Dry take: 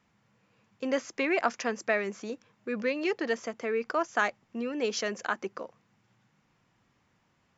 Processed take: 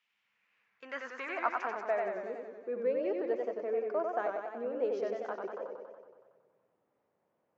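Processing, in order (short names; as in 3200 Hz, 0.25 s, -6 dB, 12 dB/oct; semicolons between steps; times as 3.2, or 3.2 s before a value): band-pass sweep 2900 Hz -> 540 Hz, 0.03–2.4; warbling echo 93 ms, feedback 67%, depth 115 cents, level -4 dB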